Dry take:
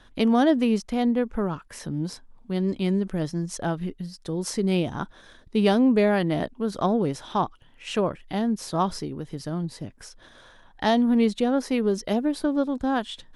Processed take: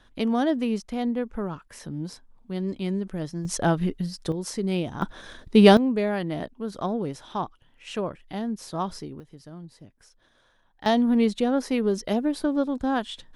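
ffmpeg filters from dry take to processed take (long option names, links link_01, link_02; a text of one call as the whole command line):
ffmpeg -i in.wav -af "asetnsamples=nb_out_samples=441:pad=0,asendcmd='3.45 volume volume 5dB;4.32 volume volume -3dB;5.02 volume volume 7dB;5.77 volume volume -5dB;9.2 volume volume -12.5dB;10.86 volume volume -0.5dB',volume=-4dB" out.wav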